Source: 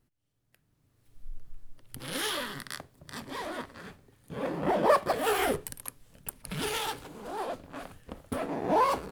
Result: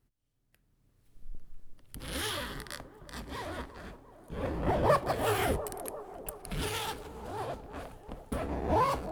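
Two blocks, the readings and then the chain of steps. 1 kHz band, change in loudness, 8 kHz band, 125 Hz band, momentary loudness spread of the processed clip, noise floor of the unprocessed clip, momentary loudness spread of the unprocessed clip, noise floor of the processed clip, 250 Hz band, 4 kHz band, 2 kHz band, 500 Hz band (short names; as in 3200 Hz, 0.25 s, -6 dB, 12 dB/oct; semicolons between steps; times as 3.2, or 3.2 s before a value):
-3.0 dB, -2.5 dB, -3.0 dB, +5.5 dB, 18 LU, -75 dBFS, 19 LU, -74 dBFS, -2.0 dB, -3.0 dB, -3.0 dB, -2.5 dB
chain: octaver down 2 oct, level +3 dB; band-limited delay 0.348 s, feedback 63%, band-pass 500 Hz, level -11 dB; gain -3 dB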